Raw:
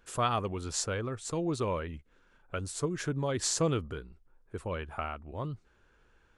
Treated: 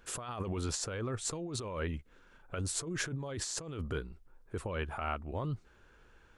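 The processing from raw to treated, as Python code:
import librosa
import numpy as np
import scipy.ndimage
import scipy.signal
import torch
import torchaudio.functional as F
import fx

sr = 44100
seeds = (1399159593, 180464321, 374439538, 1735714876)

y = fx.over_compress(x, sr, threshold_db=-37.0, ratio=-1.0)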